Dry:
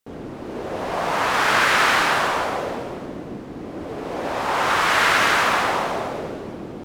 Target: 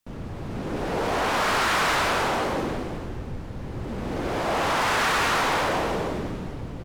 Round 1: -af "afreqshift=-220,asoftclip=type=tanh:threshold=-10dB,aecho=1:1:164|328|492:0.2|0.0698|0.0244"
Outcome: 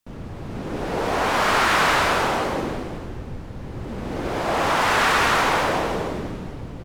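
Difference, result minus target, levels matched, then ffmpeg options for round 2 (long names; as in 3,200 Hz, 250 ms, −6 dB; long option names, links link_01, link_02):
soft clipping: distortion −11 dB
-af "afreqshift=-220,asoftclip=type=tanh:threshold=-19.5dB,aecho=1:1:164|328|492:0.2|0.0698|0.0244"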